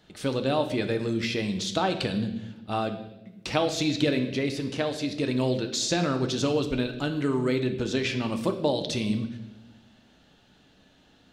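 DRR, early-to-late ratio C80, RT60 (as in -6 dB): 6.0 dB, 12.5 dB, 1.0 s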